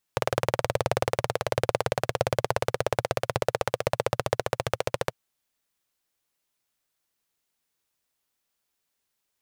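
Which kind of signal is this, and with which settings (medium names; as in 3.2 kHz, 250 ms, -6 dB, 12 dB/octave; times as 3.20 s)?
single-cylinder engine model, changing speed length 4.96 s, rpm 2300, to 1700, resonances 120/520 Hz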